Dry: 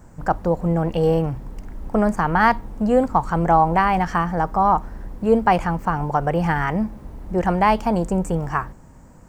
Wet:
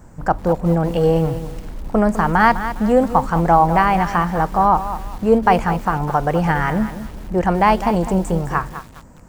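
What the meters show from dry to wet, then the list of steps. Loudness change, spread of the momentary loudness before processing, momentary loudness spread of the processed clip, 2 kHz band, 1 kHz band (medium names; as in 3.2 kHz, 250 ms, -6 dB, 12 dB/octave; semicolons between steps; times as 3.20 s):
+2.5 dB, 10 LU, 9 LU, +3.0 dB, +2.5 dB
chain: bit-crushed delay 204 ms, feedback 35%, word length 6-bit, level -11 dB; trim +2.5 dB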